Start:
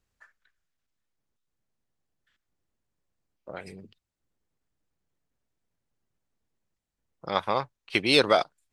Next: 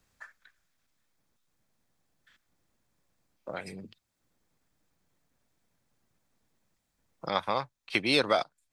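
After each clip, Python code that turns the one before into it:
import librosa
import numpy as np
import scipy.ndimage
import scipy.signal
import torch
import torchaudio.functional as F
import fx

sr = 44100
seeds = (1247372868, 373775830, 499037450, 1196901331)

y = fx.peak_eq(x, sr, hz=400.0, db=-4.0, octaves=0.47)
y = fx.notch(y, sr, hz=2900.0, q=16.0)
y = fx.band_squash(y, sr, depth_pct=40)
y = F.gain(torch.from_numpy(y), -2.5).numpy()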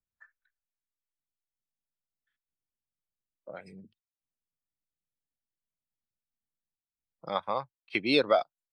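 y = fx.spectral_expand(x, sr, expansion=1.5)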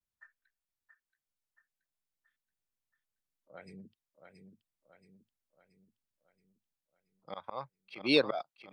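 y = fx.auto_swell(x, sr, attack_ms=171.0)
y = fx.vibrato(y, sr, rate_hz=0.53, depth_cents=46.0)
y = fx.echo_feedback(y, sr, ms=677, feedback_pct=51, wet_db=-7.0)
y = F.gain(torch.from_numpy(y), -1.0).numpy()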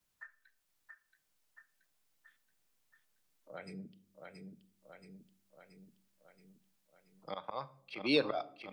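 y = fx.rider(x, sr, range_db=3, speed_s=0.5)
y = fx.room_shoebox(y, sr, seeds[0], volume_m3=640.0, walls='furnished', distance_m=0.46)
y = fx.band_squash(y, sr, depth_pct=40)
y = F.gain(torch.from_numpy(y), 3.0).numpy()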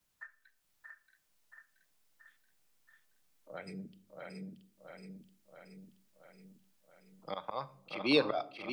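y = x + 10.0 ** (-5.5 / 20.0) * np.pad(x, (int(629 * sr / 1000.0), 0))[:len(x)]
y = F.gain(torch.from_numpy(y), 2.0).numpy()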